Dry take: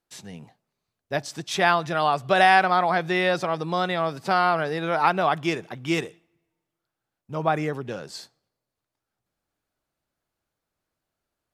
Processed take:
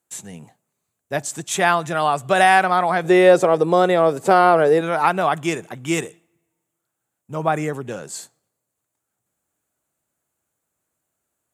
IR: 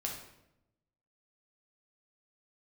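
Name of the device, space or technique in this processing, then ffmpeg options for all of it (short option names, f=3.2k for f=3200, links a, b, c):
budget condenser microphone: -filter_complex "[0:a]highpass=78,highshelf=f=6.1k:t=q:w=3:g=6.5,asettb=1/sr,asplit=3[a][b][c];[a]atrim=end=3.044[d];[b]atrim=start=3.04:end=4.81,asetpts=PTS-STARTPTS,afade=t=in:d=0.004:c=qsin,afade=t=out:st=1.766:d=0.004:c=qsin,equalizer=f=450:t=o:w=1.2:g=12.5[e];[c]atrim=start=4.806[f];[d][e]acrossfade=d=0.004:c1=hsin:c2=qsin[g];[g][f]acrossfade=d=0.004:c1=qsin:c2=hsin,volume=3dB"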